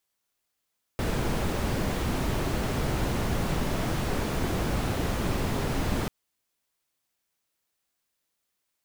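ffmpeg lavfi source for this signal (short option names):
-f lavfi -i "anoisesrc=c=brown:a=0.209:d=5.09:r=44100:seed=1"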